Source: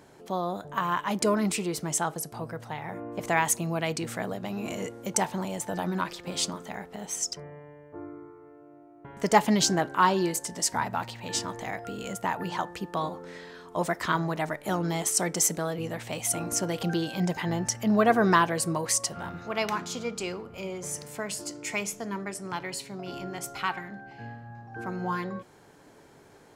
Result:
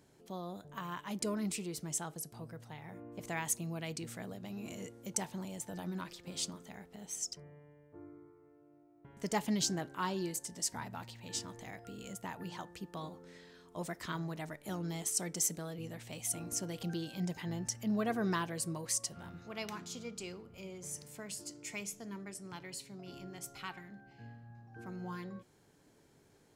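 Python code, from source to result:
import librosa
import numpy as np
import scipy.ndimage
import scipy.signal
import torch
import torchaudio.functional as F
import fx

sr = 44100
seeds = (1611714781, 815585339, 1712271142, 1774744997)

y = fx.peak_eq(x, sr, hz=960.0, db=-8.5, octaves=2.7)
y = y * 10.0 ** (-7.5 / 20.0)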